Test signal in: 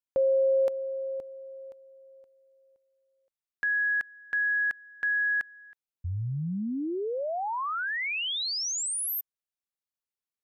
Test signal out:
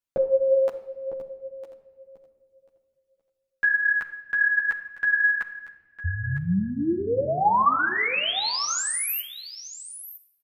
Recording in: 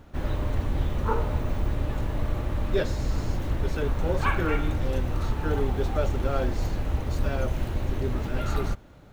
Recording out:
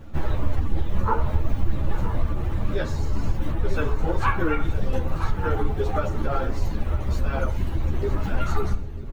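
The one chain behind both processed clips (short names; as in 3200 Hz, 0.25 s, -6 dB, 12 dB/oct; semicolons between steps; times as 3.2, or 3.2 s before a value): reverb removal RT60 1.2 s; compressor, threshold -27 dBFS; low shelf 290 Hz +5 dB; echo 0.956 s -12 dB; shoebox room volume 1600 m³, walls mixed, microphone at 0.68 m; dynamic EQ 1100 Hz, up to +7 dB, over -45 dBFS, Q 0.91; ensemble effect; gain +6 dB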